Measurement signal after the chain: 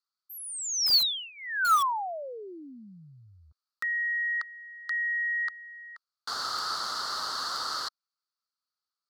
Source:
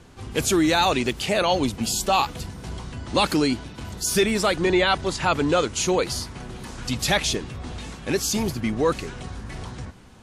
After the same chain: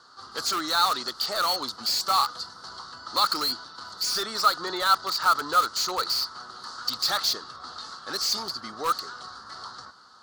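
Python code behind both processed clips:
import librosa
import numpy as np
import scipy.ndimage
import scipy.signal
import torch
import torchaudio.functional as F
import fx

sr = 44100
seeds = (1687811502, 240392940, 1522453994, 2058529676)

p1 = fx.double_bandpass(x, sr, hz=2400.0, octaves=1.8)
p2 = (np.mod(10.0 ** (32.5 / 20.0) * p1 + 1.0, 2.0) - 1.0) / 10.0 ** (32.5 / 20.0)
p3 = p1 + F.gain(torch.from_numpy(p2), -7.0).numpy()
y = F.gain(torch.from_numpy(p3), 8.5).numpy()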